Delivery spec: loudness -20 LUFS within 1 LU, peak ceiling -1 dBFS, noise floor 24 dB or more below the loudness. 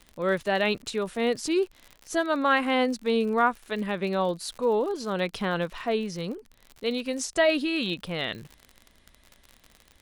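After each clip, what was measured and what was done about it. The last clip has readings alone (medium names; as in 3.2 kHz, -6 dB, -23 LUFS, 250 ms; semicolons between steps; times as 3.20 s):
tick rate 56 per s; loudness -27.0 LUFS; peak level -10.5 dBFS; loudness target -20.0 LUFS
-> de-click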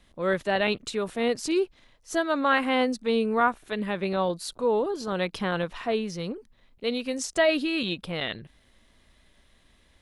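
tick rate 0.20 per s; loudness -27.0 LUFS; peak level -10.5 dBFS; loudness target -20.0 LUFS
-> trim +7 dB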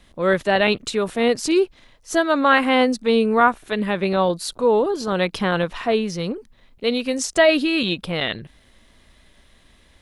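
loudness -20.0 LUFS; peak level -3.5 dBFS; noise floor -55 dBFS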